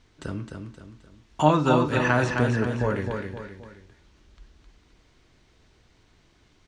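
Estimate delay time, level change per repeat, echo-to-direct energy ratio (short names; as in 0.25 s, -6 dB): 0.262 s, -7.5 dB, -4.5 dB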